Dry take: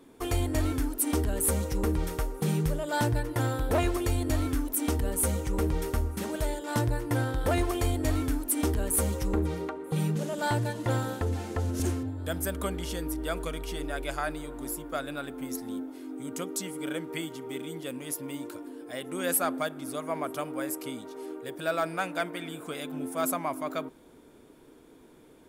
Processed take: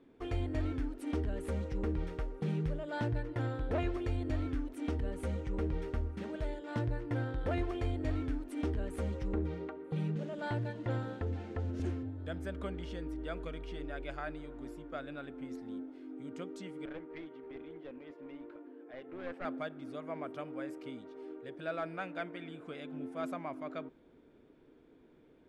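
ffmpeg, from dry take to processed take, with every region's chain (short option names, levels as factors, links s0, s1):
-filter_complex "[0:a]asettb=1/sr,asplit=3[s0][s1][s2];[s0]atrim=end=16.854[s3];[s1]atrim=start=16.85:end=19.45,asetpts=PTS-STARTPTS,afade=t=in:d=0.004:c=qsin,afade=t=out:st=2.596:d=0.004:c=qsin,highpass=290,lowpass=2200,aeval=exprs='clip(val(0),-1,0.0141)':c=same[s4];[s2]atrim=start=19.446[s5];[s3][s4]acrossfade=d=0.004:c1=hsin:c2=qsin[s6];[s6][s5]acrossfade=d=0.004:c1=qsin:c2=hsin,lowpass=2700,equalizer=f=1000:t=o:w=0.94:g=-5.5,volume=0.473"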